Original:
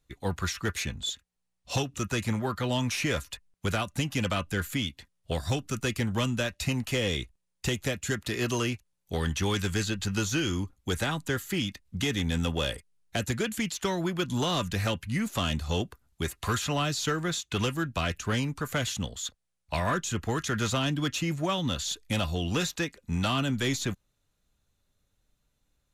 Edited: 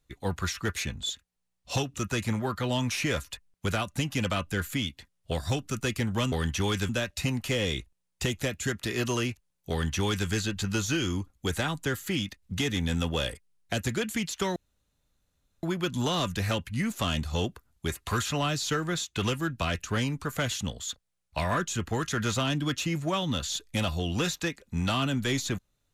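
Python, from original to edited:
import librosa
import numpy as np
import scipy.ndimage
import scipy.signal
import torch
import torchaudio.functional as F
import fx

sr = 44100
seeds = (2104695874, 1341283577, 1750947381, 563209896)

y = fx.edit(x, sr, fx.duplicate(start_s=9.14, length_s=0.57, to_s=6.32),
    fx.insert_room_tone(at_s=13.99, length_s=1.07), tone=tone)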